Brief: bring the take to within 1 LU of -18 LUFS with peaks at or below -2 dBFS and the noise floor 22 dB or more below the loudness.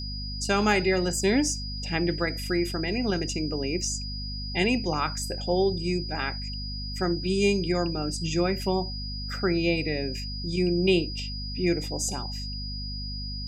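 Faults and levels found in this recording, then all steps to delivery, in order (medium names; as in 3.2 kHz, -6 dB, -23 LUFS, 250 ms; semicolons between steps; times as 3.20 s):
hum 50 Hz; highest harmonic 250 Hz; hum level -33 dBFS; steady tone 4.9 kHz; tone level -36 dBFS; loudness -27.5 LUFS; peak level -8.5 dBFS; loudness target -18.0 LUFS
-> hum notches 50/100/150/200/250 Hz; band-stop 4.9 kHz, Q 30; trim +9.5 dB; peak limiter -2 dBFS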